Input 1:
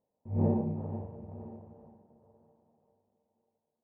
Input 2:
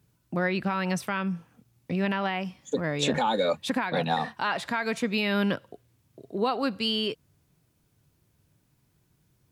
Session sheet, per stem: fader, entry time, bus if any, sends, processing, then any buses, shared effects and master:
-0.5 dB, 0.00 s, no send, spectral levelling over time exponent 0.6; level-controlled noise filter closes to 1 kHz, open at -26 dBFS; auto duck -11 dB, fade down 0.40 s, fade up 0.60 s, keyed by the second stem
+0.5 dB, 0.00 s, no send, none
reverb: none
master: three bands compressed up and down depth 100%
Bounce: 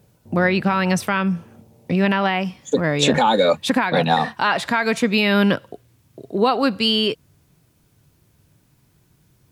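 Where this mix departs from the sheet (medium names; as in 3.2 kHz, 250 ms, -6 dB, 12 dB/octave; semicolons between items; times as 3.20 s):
stem 2 +0.5 dB -> +9.0 dB; master: missing three bands compressed up and down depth 100%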